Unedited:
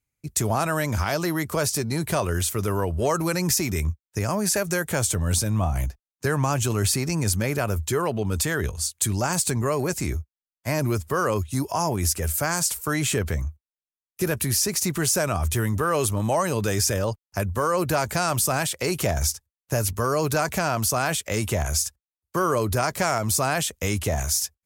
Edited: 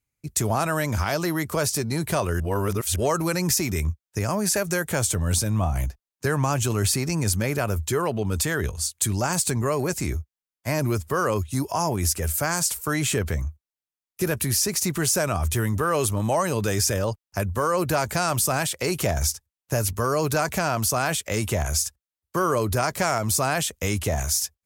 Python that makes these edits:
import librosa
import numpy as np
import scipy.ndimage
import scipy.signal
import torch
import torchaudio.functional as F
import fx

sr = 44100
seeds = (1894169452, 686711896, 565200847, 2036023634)

y = fx.edit(x, sr, fx.reverse_span(start_s=2.4, length_s=0.56), tone=tone)